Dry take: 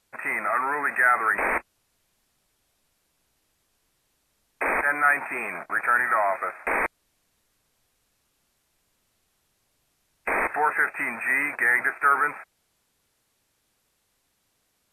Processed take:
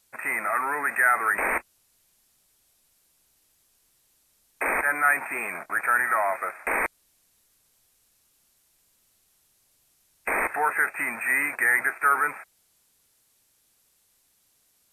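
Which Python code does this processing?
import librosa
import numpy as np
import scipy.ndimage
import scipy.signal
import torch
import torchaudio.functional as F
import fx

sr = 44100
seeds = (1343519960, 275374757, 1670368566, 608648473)

y = fx.high_shelf(x, sr, hz=4700.0, db=12.0)
y = y * 10.0 ** (-2.0 / 20.0)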